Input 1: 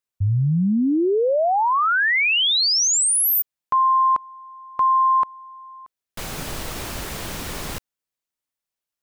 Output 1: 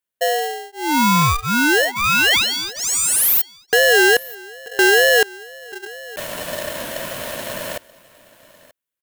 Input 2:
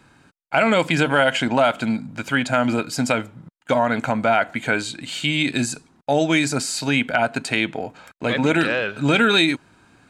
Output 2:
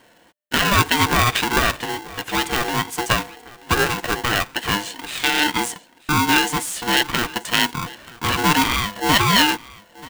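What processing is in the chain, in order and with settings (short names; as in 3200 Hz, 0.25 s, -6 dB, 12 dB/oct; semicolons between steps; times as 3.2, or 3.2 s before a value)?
wow and flutter 130 cents; fixed phaser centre 1000 Hz, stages 8; on a send: echo 0.933 s -21 dB; on the sum: polarity switched at an audio rate 600 Hz; gain +4.5 dB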